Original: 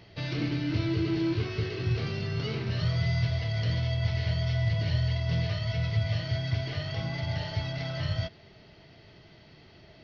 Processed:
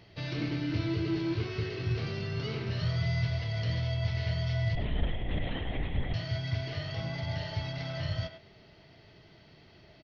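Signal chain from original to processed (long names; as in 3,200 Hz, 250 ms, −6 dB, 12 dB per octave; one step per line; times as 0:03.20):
0:04.75–0:06.14: linear-prediction vocoder at 8 kHz whisper
far-end echo of a speakerphone 100 ms, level −8 dB
level −3 dB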